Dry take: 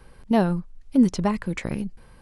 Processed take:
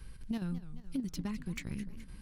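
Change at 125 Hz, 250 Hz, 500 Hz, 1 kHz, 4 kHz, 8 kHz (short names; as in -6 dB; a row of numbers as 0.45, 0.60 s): -12.0, -15.5, -24.0, -24.5, -10.5, -9.0 dB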